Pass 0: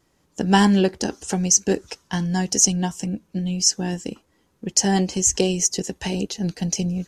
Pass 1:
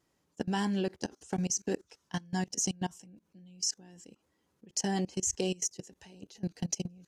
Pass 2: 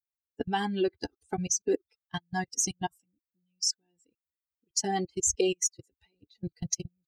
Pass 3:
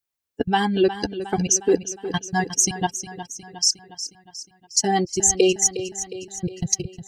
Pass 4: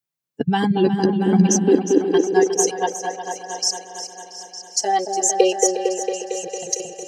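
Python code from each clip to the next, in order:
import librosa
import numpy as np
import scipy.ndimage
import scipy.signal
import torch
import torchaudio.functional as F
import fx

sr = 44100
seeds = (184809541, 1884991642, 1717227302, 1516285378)

y1 = fx.highpass(x, sr, hz=80.0, slope=6)
y1 = fx.level_steps(y1, sr, step_db=23)
y1 = y1 * librosa.db_to_amplitude(-7.0)
y2 = fx.bin_expand(y1, sr, power=2.0)
y2 = y2 + 0.56 * np.pad(y2, (int(2.5 * sr / 1000.0), 0))[:len(y2)]
y2 = y2 * librosa.db_to_amplitude(6.5)
y3 = fx.echo_feedback(y2, sr, ms=360, feedback_pct=56, wet_db=-12.0)
y3 = y3 * librosa.db_to_amplitude(9.0)
y4 = fx.echo_opening(y3, sr, ms=227, hz=750, octaves=1, feedback_pct=70, wet_db=-3)
y4 = fx.filter_sweep_highpass(y4, sr, from_hz=150.0, to_hz=550.0, start_s=0.98, end_s=3.02, q=4.6)
y4 = y4 * librosa.db_to_amplitude(-2.0)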